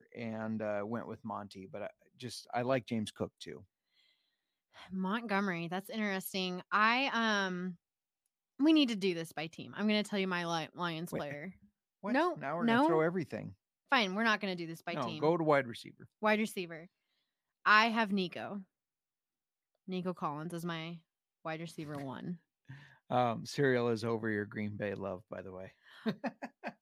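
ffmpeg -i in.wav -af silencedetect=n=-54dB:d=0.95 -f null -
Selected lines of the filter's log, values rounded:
silence_start: 3.63
silence_end: 4.75 | silence_duration: 1.12
silence_start: 18.63
silence_end: 19.88 | silence_duration: 1.24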